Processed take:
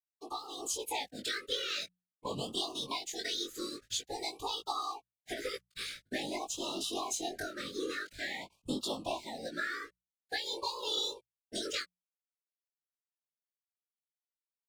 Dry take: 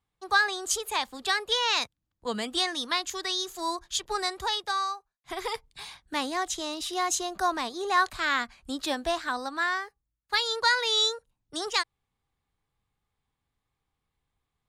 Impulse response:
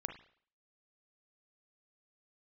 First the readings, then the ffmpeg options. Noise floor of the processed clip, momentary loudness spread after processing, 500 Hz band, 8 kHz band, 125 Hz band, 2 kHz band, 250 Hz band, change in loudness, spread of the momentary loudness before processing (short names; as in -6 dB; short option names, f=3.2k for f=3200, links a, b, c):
under -85 dBFS, 8 LU, -6.5 dB, -6.5 dB, n/a, -12.5 dB, -5.0 dB, -9.0 dB, 12 LU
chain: -filter_complex "[0:a]acompressor=threshold=-39dB:ratio=4,asplit=2[a][b];[1:a]atrim=start_sample=2205,asetrate=74970,aresample=44100[c];[b][c]afir=irnorm=-1:irlink=0,volume=-13dB[d];[a][d]amix=inputs=2:normalize=0,aeval=exprs='sgn(val(0))*max(abs(val(0))-0.00141,0)':c=same,afftfilt=real='hypot(re,im)*cos(2*PI*random(0))':imag='hypot(re,im)*sin(2*PI*random(1))':win_size=512:overlap=0.75,bandreject=f=60:t=h:w=6,bandreject=f=120:t=h:w=6,bandreject=f=180:t=h:w=6,flanger=delay=17:depth=5:speed=0.2,dynaudnorm=f=300:g=3:m=8dB,afftfilt=real='re*(1-between(b*sr/1024,790*pow(1900/790,0.5+0.5*sin(2*PI*0.48*pts/sr))/1.41,790*pow(1900/790,0.5+0.5*sin(2*PI*0.48*pts/sr))*1.41))':imag='im*(1-between(b*sr/1024,790*pow(1900/790,0.5+0.5*sin(2*PI*0.48*pts/sr))/1.41,790*pow(1900/790,0.5+0.5*sin(2*PI*0.48*pts/sr))*1.41))':win_size=1024:overlap=0.75,volume=5dB"